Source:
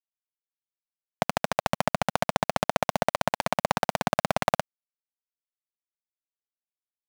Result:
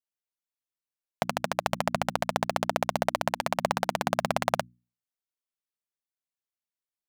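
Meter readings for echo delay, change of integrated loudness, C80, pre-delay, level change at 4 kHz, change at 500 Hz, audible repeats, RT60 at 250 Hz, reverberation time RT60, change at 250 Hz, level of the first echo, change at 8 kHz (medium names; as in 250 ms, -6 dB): no echo, -1.5 dB, no reverb, no reverb, -1.5 dB, -1.5 dB, no echo, no reverb, no reverb, -2.0 dB, no echo, -1.5 dB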